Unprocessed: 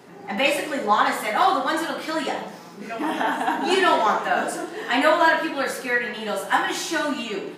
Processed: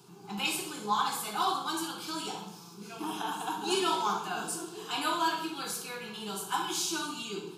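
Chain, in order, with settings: bell 620 Hz -13.5 dB 2 oct; fixed phaser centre 380 Hz, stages 8; flutter echo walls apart 10.5 m, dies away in 0.34 s

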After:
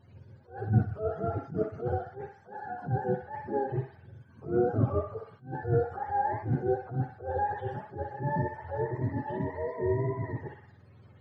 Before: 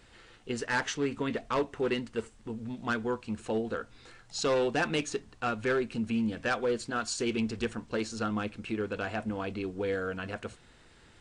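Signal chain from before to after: spectrum mirrored in octaves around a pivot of 430 Hz; tape spacing loss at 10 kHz 30 dB; narrowing echo 62 ms, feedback 64%, band-pass 1600 Hz, level -3.5 dB; attack slew limiter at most 160 dB/s; gain +4.5 dB

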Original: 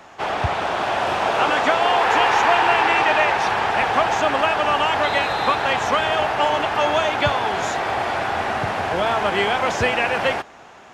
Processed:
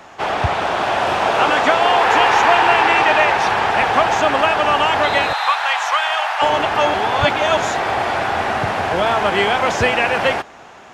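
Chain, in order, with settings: 5.33–6.42 HPF 780 Hz 24 dB/oct; 6.94–7.57 reverse; gain +3.5 dB

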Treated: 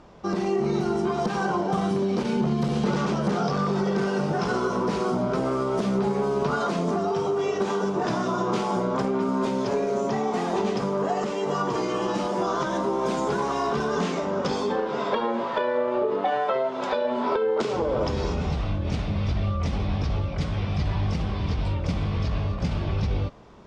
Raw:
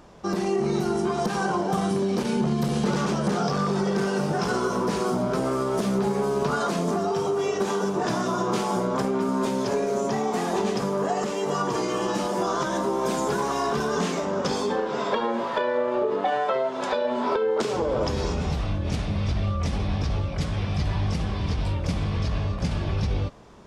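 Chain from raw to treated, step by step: Bessel low-pass 4700 Hz, order 2; notch 1700 Hz, Q 21

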